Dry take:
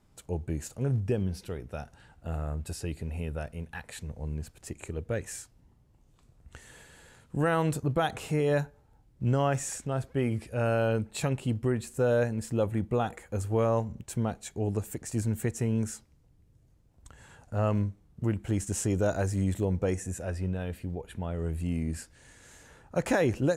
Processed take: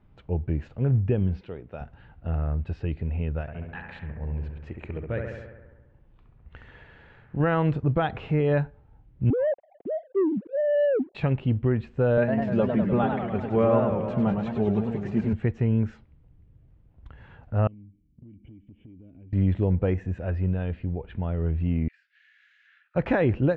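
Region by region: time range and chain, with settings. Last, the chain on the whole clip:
1.41–1.81 HPF 310 Hz 6 dB/oct + dynamic EQ 1900 Hz, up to -5 dB, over -55 dBFS, Q 0.81
3.41–7.4 low shelf 460 Hz -4.5 dB + analogue delay 68 ms, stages 1024, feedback 67%, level -4.5 dB
9.3–11.15 sine-wave speech + elliptic low-pass 720 Hz, stop band 60 dB + sample leveller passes 1
12.17–15.33 HPF 61 Hz + comb 5 ms, depth 72% + warbling echo 0.102 s, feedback 71%, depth 202 cents, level -5.5 dB
17.67–19.33 vocal tract filter i + compressor 8:1, threshold -50 dBFS
21.88–22.95 steep high-pass 1500 Hz 48 dB/oct + compressor, threshold -54 dBFS
whole clip: inverse Chebyshev low-pass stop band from 11000 Hz, stop band 70 dB; low shelf 180 Hz +7 dB; gain +1.5 dB

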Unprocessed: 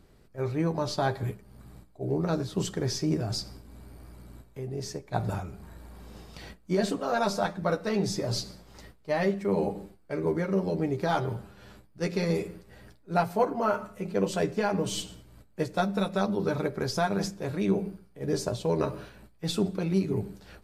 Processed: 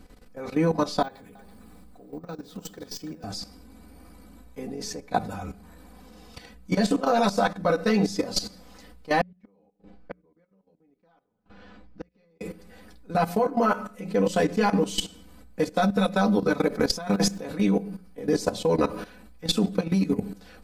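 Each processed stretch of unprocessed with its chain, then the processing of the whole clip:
1.02–3.24 careless resampling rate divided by 2×, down none, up hold + compressor 4:1, threshold -43 dBFS + echo 0.332 s -10.5 dB
9.21–12.41 flipped gate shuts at -28 dBFS, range -41 dB + air absorption 170 m
16.71–17.4 negative-ratio compressor -29 dBFS, ratio -0.5 + crackle 290/s -51 dBFS
whole clip: notches 60/120/180 Hz; comb 4 ms, depth 90%; level quantiser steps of 14 dB; gain +7.5 dB

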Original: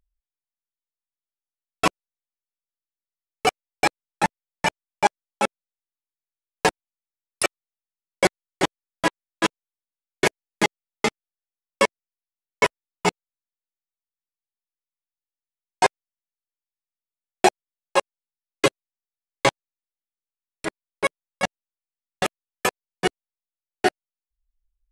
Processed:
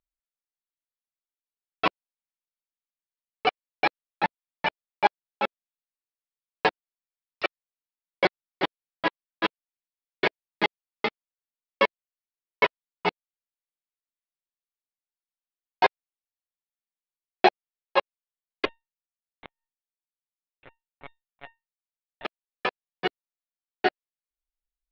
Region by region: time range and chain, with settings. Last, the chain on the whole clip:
18.65–22.25 monotone LPC vocoder at 8 kHz 140 Hz + resonator 920 Hz, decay 0.2 s, mix 80% + flipped gate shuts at -14 dBFS, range -40 dB
whole clip: steep low-pass 4500 Hz 48 dB/oct; low shelf 180 Hz -11 dB; upward expander 1.5:1, over -27 dBFS

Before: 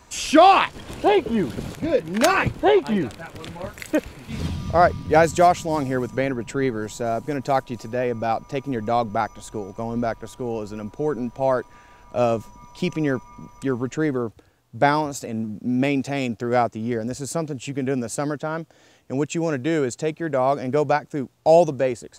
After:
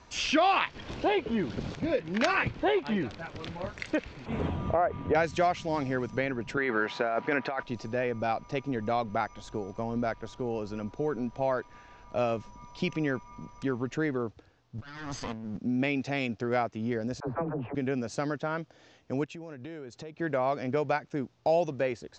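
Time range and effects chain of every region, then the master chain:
4.26–5.15 EQ curve 180 Hz 0 dB, 390 Hz +10 dB, 750 Hz +11 dB, 3200 Hz -3 dB, 5000 Hz -19 dB, 7400 Hz -2 dB + compressor 3:1, threshold -14 dBFS
6.57–7.63 bell 1400 Hz +11 dB 2.8 oct + negative-ratio compressor -21 dBFS + BPF 190–3700 Hz
14.78–15.57 minimum comb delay 0.63 ms + bell 380 Hz -5.5 dB 1.5 oct + negative-ratio compressor -36 dBFS
17.2–17.75 LPF 1000 Hz 24 dB/oct + dispersion lows, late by 74 ms, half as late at 410 Hz + spectral compressor 2:1
19.24–20.19 high shelf 6300 Hz -5.5 dB + compressor 8:1, threshold -35 dBFS
whole clip: steep low-pass 6100 Hz 36 dB/oct; dynamic EQ 2200 Hz, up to +6 dB, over -37 dBFS, Q 0.97; compressor 2:1, threshold -25 dBFS; gain -3.5 dB

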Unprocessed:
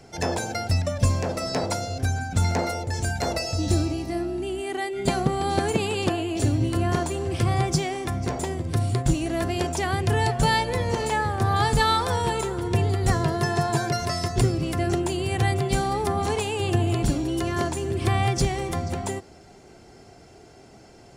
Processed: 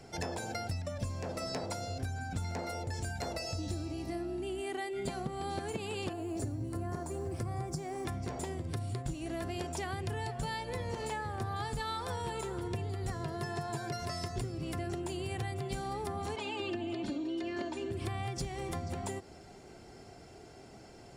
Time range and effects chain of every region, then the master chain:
6.13–8.05 bell 3100 Hz -14.5 dB 1 oct + requantised 10-bit, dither none
16.36–17.91 Chebyshev band-pass 190–4100 Hz + comb 3.3 ms, depth 80%
whole clip: compressor, threshold -31 dBFS; notch 6200 Hz, Q 19; gain -3.5 dB

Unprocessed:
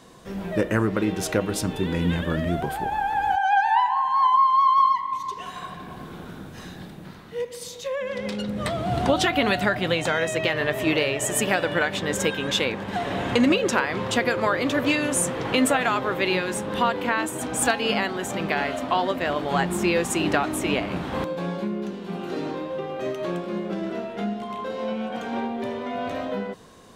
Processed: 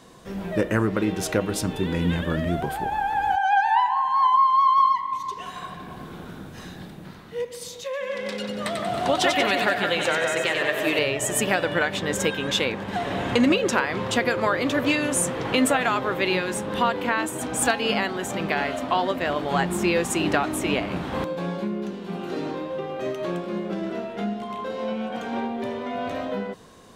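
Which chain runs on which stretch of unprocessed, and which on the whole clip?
7.84–10.99 HPF 410 Hz 6 dB/oct + split-band echo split 1800 Hz, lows 0.163 s, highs 93 ms, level -4 dB
whole clip: dry

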